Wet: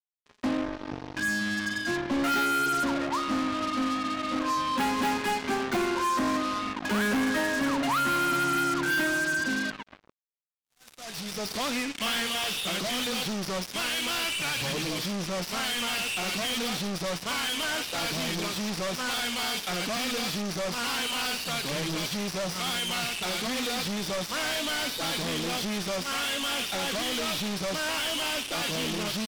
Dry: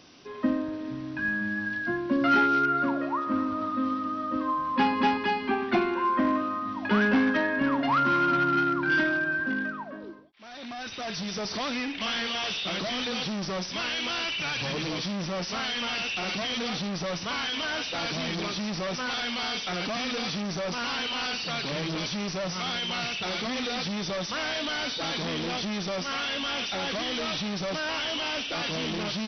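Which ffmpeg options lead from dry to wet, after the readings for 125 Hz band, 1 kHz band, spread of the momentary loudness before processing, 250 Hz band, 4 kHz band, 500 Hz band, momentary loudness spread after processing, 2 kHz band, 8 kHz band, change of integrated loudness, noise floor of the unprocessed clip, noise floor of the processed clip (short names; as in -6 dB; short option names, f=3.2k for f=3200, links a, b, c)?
-1.0 dB, -1.5 dB, 7 LU, -2.0 dB, +1.0 dB, -1.0 dB, 5 LU, -0.5 dB, n/a, -0.5 dB, -38 dBFS, -55 dBFS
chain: -af "acrusher=bits=4:mix=0:aa=0.5,volume=24dB,asoftclip=hard,volume=-24dB"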